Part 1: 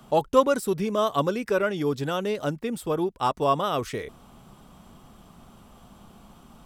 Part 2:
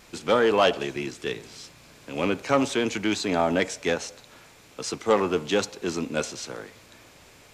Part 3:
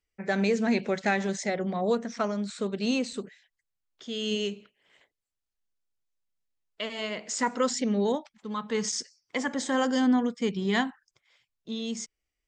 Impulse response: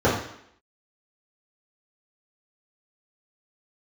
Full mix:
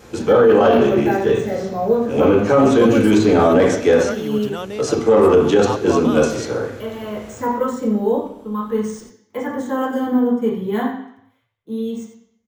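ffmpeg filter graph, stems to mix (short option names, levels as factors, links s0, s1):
-filter_complex "[0:a]adelay=2450,volume=0.841[s0];[1:a]volume=1.12,asplit=2[s1][s2];[s2]volume=0.251[s3];[2:a]equalizer=f=100:t=o:w=0.33:g=11,equalizer=f=1000:t=o:w=0.33:g=6,equalizer=f=5000:t=o:w=0.33:g=-8,acrusher=samples=3:mix=1:aa=0.000001,volume=0.282,asplit=4[s4][s5][s6][s7];[s5]volume=0.447[s8];[s6]volume=0.316[s9];[s7]apad=whole_len=332295[s10];[s1][s10]sidechaincompress=threshold=0.00562:ratio=8:attack=16:release=135[s11];[3:a]atrim=start_sample=2205[s12];[s3][s8]amix=inputs=2:normalize=0[s13];[s13][s12]afir=irnorm=-1:irlink=0[s14];[s9]aecho=0:1:89:1[s15];[s0][s11][s4][s14][s15]amix=inputs=5:normalize=0,alimiter=limit=0.562:level=0:latency=1:release=12"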